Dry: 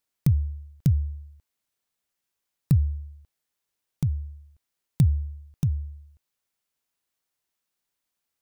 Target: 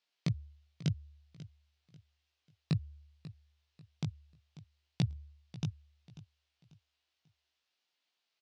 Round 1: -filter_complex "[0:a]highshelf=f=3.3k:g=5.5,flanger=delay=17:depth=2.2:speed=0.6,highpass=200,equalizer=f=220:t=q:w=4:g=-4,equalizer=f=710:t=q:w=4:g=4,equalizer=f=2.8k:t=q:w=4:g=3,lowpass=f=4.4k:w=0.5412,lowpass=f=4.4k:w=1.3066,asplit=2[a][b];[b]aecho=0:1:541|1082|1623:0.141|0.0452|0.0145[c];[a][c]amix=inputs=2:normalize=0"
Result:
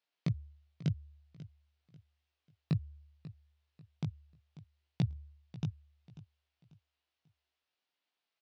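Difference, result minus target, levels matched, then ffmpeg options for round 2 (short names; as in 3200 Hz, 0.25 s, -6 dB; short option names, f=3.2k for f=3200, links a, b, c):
8000 Hz band -8.5 dB
-filter_complex "[0:a]highshelf=f=3.3k:g=16.5,flanger=delay=17:depth=2.2:speed=0.6,highpass=200,equalizer=f=220:t=q:w=4:g=-4,equalizer=f=710:t=q:w=4:g=4,equalizer=f=2.8k:t=q:w=4:g=3,lowpass=f=4.4k:w=0.5412,lowpass=f=4.4k:w=1.3066,asplit=2[a][b];[b]aecho=0:1:541|1082|1623:0.141|0.0452|0.0145[c];[a][c]amix=inputs=2:normalize=0"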